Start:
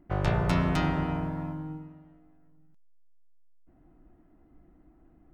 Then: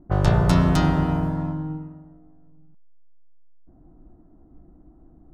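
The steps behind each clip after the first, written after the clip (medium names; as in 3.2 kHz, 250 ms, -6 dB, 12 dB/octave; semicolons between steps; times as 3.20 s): peaking EQ 2.3 kHz -8 dB 0.6 oct; level-controlled noise filter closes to 950 Hz, open at -26.5 dBFS; tone controls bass +3 dB, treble +5 dB; trim +6 dB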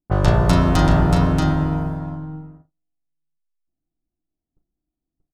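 gate -40 dBFS, range -38 dB; doubling 37 ms -10 dB; delay 632 ms -4.5 dB; trim +3 dB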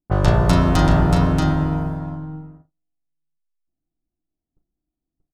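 no audible change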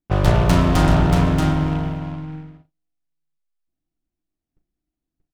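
delay time shaken by noise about 1.6 kHz, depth 0.049 ms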